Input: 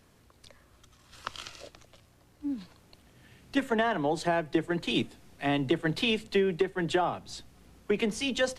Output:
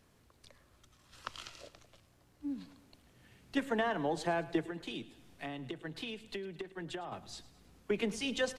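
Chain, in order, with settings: 4.60–7.12 s: compression, threshold -34 dBFS, peak gain reduction 12.5 dB; feedback delay 107 ms, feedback 50%, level -17.5 dB; trim -5.5 dB

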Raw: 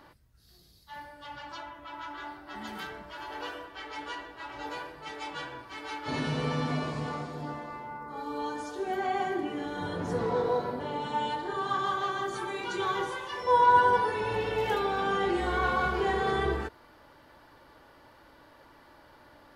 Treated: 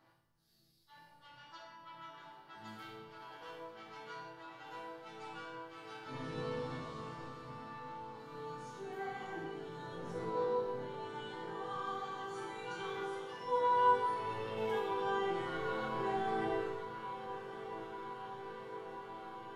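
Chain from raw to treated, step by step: octave divider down 1 oct, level -3 dB; bass shelf 93 Hz -7 dB; chord resonator A2 minor, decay 0.68 s; echo that smears into a reverb 1235 ms, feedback 80%, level -12 dB; simulated room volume 1000 m³, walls mixed, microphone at 0.58 m; trim +6 dB

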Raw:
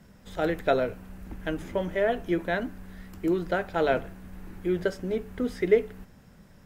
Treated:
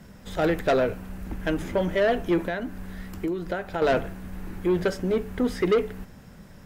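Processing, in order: 2.44–3.82 s: compression 6:1, threshold -32 dBFS, peak gain reduction 10.5 dB; saturation -22.5 dBFS, distortion -10 dB; trim +6.5 dB

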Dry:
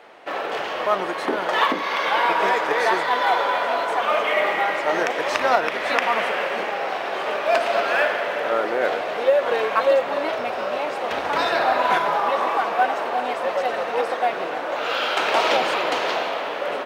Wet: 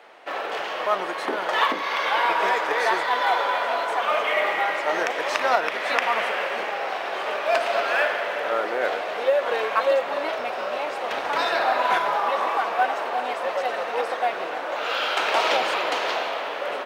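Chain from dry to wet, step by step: bass shelf 270 Hz -10.5 dB; trim -1 dB

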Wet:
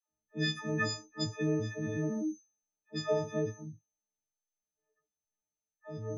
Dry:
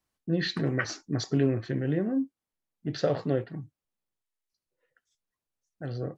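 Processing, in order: partials quantised in pitch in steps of 6 st; treble shelf 2 kHz -7.5 dB; whistle 6.2 kHz -50 dBFS; phase dispersion lows, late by 104 ms, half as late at 650 Hz; level-controlled noise filter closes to 680 Hz, open at -25 dBFS; trim -6 dB

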